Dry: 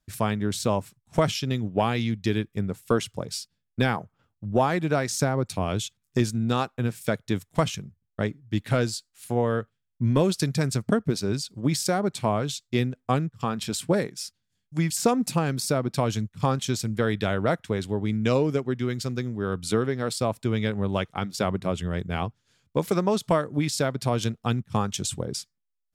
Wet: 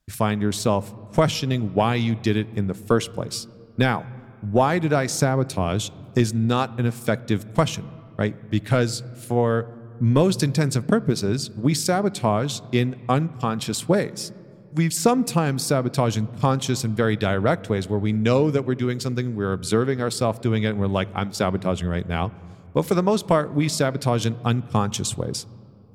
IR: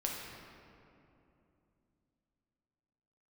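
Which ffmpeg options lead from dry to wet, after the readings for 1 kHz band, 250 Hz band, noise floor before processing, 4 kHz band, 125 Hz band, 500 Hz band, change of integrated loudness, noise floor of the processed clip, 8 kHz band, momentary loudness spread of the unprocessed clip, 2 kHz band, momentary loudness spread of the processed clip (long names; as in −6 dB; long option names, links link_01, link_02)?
+3.5 dB, +4.0 dB, −79 dBFS, +3.0 dB, +4.5 dB, +4.0 dB, +4.0 dB, −45 dBFS, +3.0 dB, 7 LU, +3.5 dB, 7 LU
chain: -filter_complex "[0:a]asplit=2[link_01][link_02];[1:a]atrim=start_sample=2205,lowpass=3400,lowshelf=frequency=130:gain=8[link_03];[link_02][link_03]afir=irnorm=-1:irlink=0,volume=-20dB[link_04];[link_01][link_04]amix=inputs=2:normalize=0,volume=3dB"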